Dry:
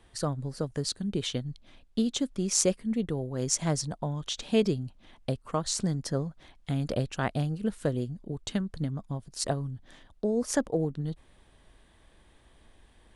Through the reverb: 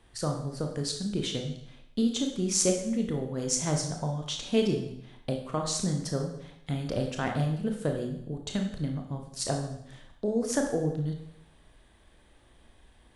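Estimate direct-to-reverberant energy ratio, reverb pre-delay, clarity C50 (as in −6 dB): 2.5 dB, 24 ms, 6.0 dB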